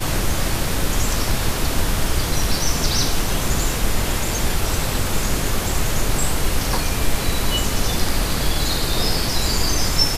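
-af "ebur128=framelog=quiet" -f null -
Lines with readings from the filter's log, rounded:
Integrated loudness:
  I:         -21.4 LUFS
  Threshold: -31.4 LUFS
Loudness range:
  LRA:         1.0 LU
  Threshold: -41.6 LUFS
  LRA low:   -22.0 LUFS
  LRA high:  -21.1 LUFS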